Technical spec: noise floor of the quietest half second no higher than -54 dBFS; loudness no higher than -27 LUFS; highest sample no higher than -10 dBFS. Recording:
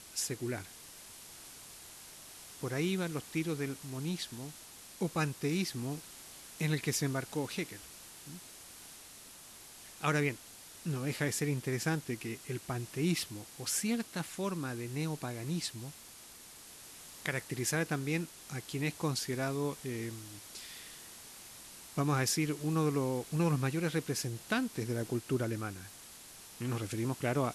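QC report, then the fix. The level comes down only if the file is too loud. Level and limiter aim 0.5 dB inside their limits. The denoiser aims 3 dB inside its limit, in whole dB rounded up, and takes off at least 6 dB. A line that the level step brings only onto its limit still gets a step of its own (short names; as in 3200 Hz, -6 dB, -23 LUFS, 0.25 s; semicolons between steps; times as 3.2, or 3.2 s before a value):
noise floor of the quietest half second -53 dBFS: fail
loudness -35.5 LUFS: OK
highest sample -18.0 dBFS: OK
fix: denoiser 6 dB, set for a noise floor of -53 dBFS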